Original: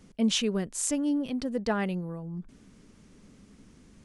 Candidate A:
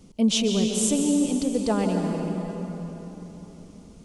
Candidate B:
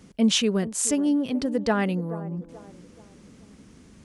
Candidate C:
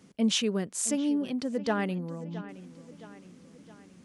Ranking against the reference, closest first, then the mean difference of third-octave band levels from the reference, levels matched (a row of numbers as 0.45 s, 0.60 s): B, C, A; 1.5 dB, 3.5 dB, 8.0 dB